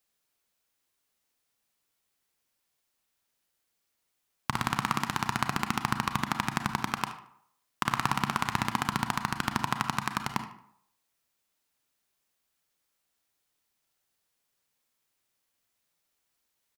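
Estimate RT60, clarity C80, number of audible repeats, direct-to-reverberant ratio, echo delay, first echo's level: 0.70 s, 13.0 dB, 1, 7.5 dB, 75 ms, -15.5 dB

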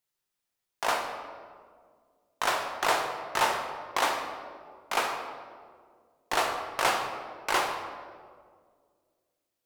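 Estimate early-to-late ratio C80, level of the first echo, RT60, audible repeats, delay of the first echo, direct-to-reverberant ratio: 6.5 dB, no echo, 1.9 s, no echo, no echo, 3.0 dB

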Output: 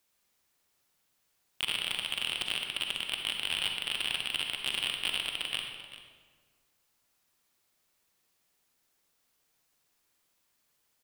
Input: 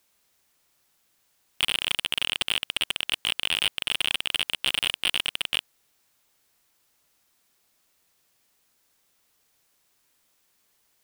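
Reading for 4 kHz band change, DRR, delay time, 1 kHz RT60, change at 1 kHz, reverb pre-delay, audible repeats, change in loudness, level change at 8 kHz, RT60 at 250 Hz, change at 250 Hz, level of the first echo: -6.0 dB, 2.5 dB, 390 ms, 1.5 s, -5.5 dB, 40 ms, 1, -6.0 dB, -6.5 dB, 1.8 s, -5.0 dB, -15.0 dB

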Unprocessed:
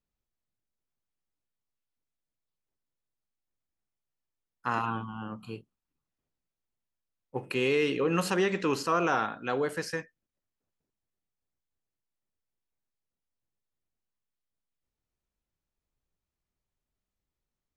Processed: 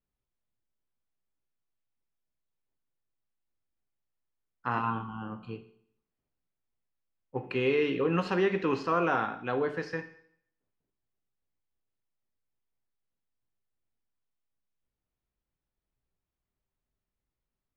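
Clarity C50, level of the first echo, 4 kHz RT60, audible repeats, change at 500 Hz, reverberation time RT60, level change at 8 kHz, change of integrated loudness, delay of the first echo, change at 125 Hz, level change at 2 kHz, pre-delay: 12.5 dB, no echo, 0.65 s, no echo, 0.0 dB, 0.65 s, under -15 dB, -1.0 dB, no echo, +0.5 dB, -1.5 dB, 8 ms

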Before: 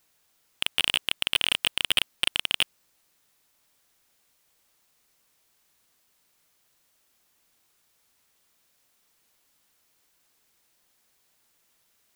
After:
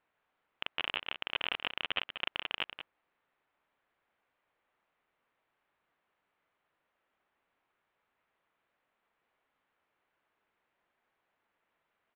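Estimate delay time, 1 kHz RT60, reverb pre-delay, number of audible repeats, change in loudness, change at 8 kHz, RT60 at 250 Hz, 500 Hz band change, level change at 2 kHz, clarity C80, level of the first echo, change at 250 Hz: 186 ms, no reverb, no reverb, 1, -11.0 dB, under -40 dB, no reverb, -3.5 dB, -7.5 dB, no reverb, -10.0 dB, -7.0 dB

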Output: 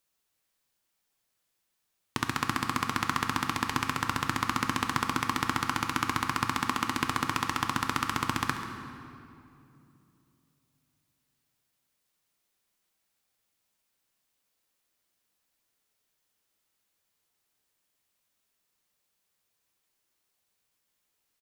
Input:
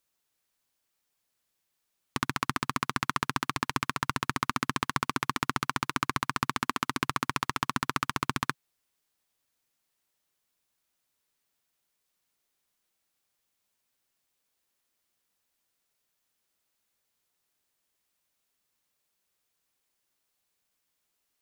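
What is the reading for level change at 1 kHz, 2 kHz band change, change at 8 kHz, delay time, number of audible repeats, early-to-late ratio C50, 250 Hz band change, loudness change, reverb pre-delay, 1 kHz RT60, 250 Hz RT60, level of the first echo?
+1.0 dB, +1.0 dB, +1.0 dB, 137 ms, 1, 6.0 dB, +2.0 dB, +1.0 dB, 3 ms, 2.5 s, 3.4 s, -15.5 dB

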